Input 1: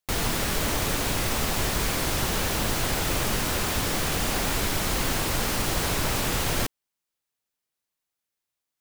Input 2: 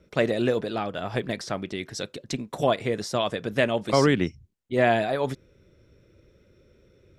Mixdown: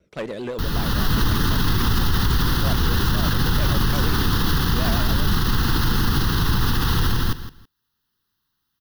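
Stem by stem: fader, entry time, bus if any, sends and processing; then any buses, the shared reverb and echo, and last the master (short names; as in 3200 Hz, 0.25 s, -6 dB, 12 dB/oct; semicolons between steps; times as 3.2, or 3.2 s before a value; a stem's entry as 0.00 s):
0.0 dB, 0.50 s, no send, echo send -4 dB, tone controls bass +6 dB, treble -3 dB; AGC gain up to 13 dB; fixed phaser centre 2300 Hz, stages 6
-4.5 dB, 0.00 s, no send, no echo send, one-sided clip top -21.5 dBFS; vibrato 7.9 Hz 98 cents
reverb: off
echo: feedback echo 0.163 s, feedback 19%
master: limiter -10.5 dBFS, peak gain reduction 9.5 dB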